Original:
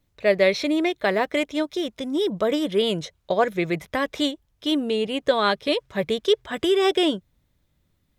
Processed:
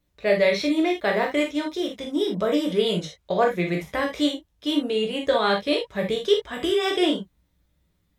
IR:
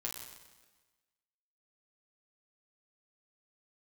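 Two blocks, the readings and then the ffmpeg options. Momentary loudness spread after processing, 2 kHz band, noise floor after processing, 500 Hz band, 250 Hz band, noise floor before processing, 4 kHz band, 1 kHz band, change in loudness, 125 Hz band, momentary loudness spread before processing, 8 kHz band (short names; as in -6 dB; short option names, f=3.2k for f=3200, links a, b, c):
7 LU, -0.5 dB, -70 dBFS, -0.5 dB, 0.0 dB, -70 dBFS, -1.0 dB, -0.5 dB, -0.5 dB, +2.0 dB, 7 LU, -1.0 dB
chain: -filter_complex "[1:a]atrim=start_sample=2205,atrim=end_sample=3969,asetrate=43218,aresample=44100[a];[0:a][a]afir=irnorm=-1:irlink=0"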